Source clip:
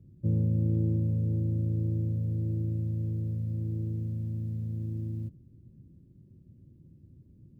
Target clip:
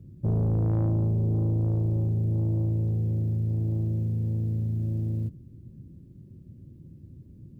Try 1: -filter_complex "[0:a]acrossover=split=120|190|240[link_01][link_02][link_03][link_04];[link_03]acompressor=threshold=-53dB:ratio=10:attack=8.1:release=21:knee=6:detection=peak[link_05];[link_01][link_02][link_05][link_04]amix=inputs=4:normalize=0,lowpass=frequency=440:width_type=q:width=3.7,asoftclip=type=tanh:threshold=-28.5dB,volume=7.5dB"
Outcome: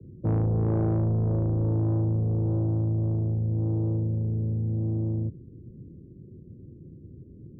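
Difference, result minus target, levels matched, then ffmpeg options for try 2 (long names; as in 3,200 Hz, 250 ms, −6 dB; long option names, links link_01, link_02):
downward compressor: peak gain reduction +12 dB; 500 Hz band +4.0 dB
-af "asoftclip=type=tanh:threshold=-28.5dB,volume=7.5dB"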